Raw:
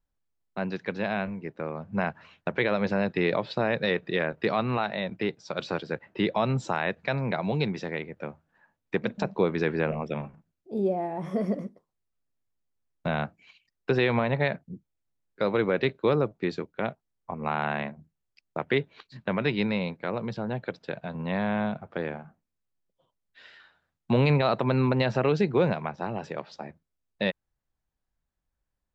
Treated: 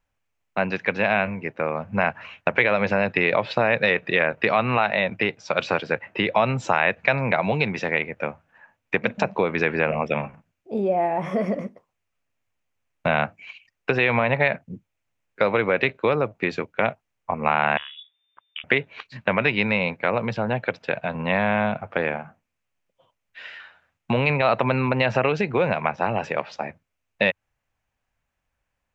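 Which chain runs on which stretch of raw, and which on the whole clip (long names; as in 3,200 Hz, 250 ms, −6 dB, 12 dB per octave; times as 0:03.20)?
0:17.77–0:18.64: downward compressor 10 to 1, threshold −42 dBFS + voice inversion scrambler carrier 3,600 Hz
whole clip: graphic EQ with 15 bands 100 Hz +8 dB, 250 Hz +4 dB, 2,500 Hz +6 dB, 6,300 Hz +6 dB; downward compressor 4 to 1, threshold −23 dBFS; flat-topped bell 1,200 Hz +9 dB 2.9 octaves; level +1 dB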